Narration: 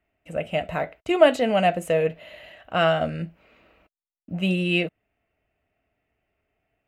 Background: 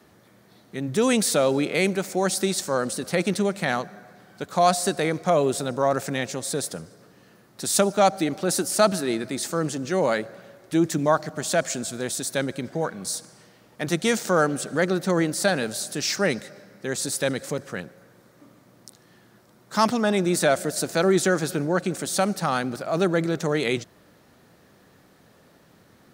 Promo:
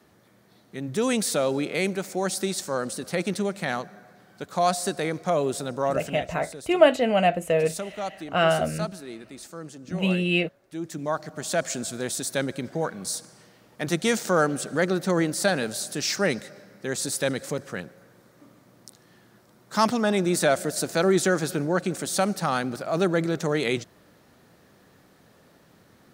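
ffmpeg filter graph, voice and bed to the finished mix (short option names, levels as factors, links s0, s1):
-filter_complex "[0:a]adelay=5600,volume=0.944[s0];[1:a]volume=2.82,afade=t=out:st=5.88:d=0.41:silence=0.316228,afade=t=in:st=10.76:d=1.07:silence=0.237137[s1];[s0][s1]amix=inputs=2:normalize=0"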